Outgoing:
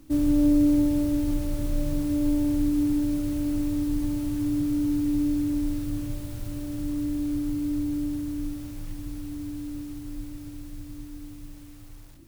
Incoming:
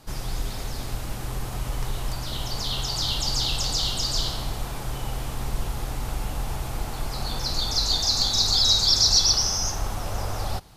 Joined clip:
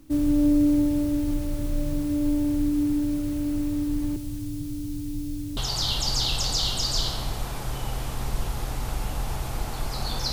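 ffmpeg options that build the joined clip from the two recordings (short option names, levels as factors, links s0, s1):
-filter_complex "[0:a]asettb=1/sr,asplit=3[s0][s1][s2];[s0]atrim=end=4.164[s3];[s1]atrim=start=4.16:end=5.57,asetpts=PTS-STARTPTS,afade=t=in:d=0.004:c=qsin,afade=t=out:st=1.406:d=0.004:c=qsin,acrossover=split=190|3000[s4][s5][s6];[s5]acompressor=threshold=0.01:ratio=4:attack=3.2:release=140:knee=2.83:detection=peak[s7];[s4][s7][s6]amix=inputs=3:normalize=0[s8];[s2]atrim=start=5.566[s9];[s3][s8]acrossfade=d=0.004:c1=hsin:c2=qsin[s10];[s10][s9]acrossfade=d=0.004:c1=qsin:c2=hsin,apad=whole_dur=10.32,atrim=end=10.32,atrim=end=5.572[s11];[1:a]atrim=start=2.768:end=7.52[s12];[s11][s12]acrossfade=d=0.004:c1=hsin:c2=hsin"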